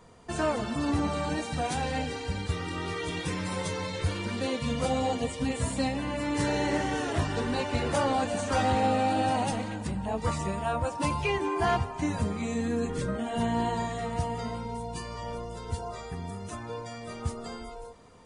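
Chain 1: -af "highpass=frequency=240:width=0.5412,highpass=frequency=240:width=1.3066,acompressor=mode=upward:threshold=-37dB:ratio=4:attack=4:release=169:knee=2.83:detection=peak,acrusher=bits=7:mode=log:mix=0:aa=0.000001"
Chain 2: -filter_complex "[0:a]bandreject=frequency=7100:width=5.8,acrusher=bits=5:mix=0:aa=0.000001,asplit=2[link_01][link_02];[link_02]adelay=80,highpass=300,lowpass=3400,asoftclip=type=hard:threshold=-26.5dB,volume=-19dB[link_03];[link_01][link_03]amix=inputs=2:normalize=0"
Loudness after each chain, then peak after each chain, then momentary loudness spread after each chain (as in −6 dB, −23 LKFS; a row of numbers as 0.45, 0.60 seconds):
−31.5, −30.0 LKFS; −14.5, −17.5 dBFS; 12, 10 LU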